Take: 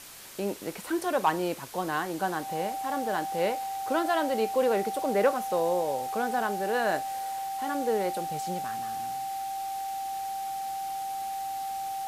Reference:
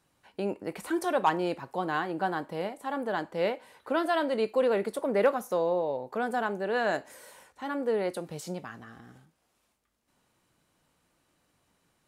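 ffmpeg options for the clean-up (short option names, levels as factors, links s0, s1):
-af "bandreject=f=780:w=30,afwtdn=0.0056,asetnsamples=n=441:p=0,asendcmd='9.75 volume volume -9.5dB',volume=1"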